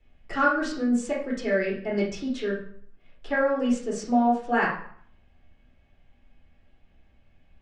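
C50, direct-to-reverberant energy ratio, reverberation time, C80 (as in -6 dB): 4.0 dB, -7.0 dB, 0.60 s, 9.0 dB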